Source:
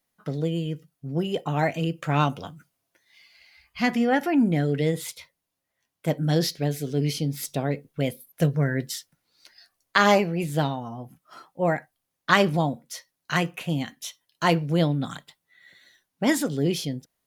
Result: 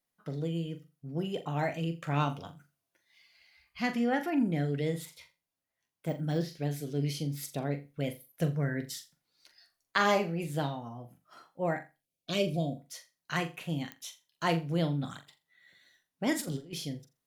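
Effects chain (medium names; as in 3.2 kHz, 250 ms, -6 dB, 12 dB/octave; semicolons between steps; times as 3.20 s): 5.05–6.51 s: de-esser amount 100%; 11.95–12.77 s: time-frequency box 720–2200 Hz -21 dB; 16.33–16.73 s: compressor with a negative ratio -30 dBFS, ratio -0.5; flutter echo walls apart 7.2 m, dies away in 0.26 s; clicks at 13.92 s, -17 dBFS; trim -8 dB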